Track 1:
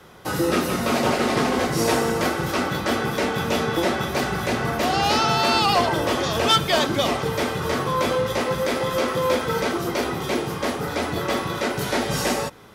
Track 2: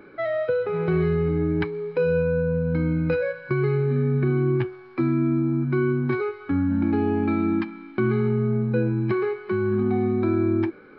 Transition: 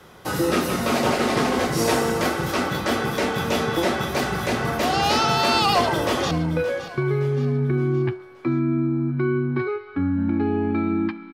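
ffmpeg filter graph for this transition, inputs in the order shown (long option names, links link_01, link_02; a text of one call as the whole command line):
ffmpeg -i cue0.wav -i cue1.wav -filter_complex "[0:a]apad=whole_dur=11.33,atrim=end=11.33,atrim=end=6.312[link_01];[1:a]atrim=start=2.838:end=7.86[link_02];[link_01][link_02]acrossfade=duration=0.004:curve1=hsin:curve2=hsin,asplit=2[link_03][link_04];[link_04]afade=type=in:start_time=5.65:duration=0.01,afade=type=out:start_time=6.31:duration=0.01,aecho=0:1:570|1140|1710|2280:0.199526|0.0897868|0.0404041|0.0181818[link_05];[link_03][link_05]amix=inputs=2:normalize=0" out.wav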